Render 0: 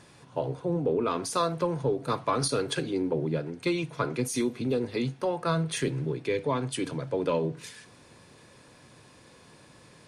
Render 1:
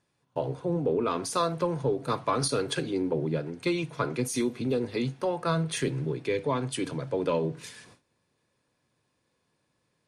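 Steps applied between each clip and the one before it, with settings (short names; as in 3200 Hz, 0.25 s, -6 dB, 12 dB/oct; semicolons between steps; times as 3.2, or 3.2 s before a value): gate with hold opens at -41 dBFS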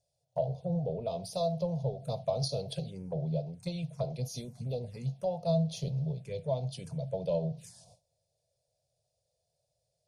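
EQ curve 190 Hz 0 dB, 300 Hz -29 dB, 650 Hz +7 dB, 1100 Hz -20 dB, 1900 Hz -21 dB, 5000 Hz 0 dB; envelope phaser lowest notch 200 Hz, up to 1600 Hz, full sweep at -30.5 dBFS; high shelf 8600 Hz -5 dB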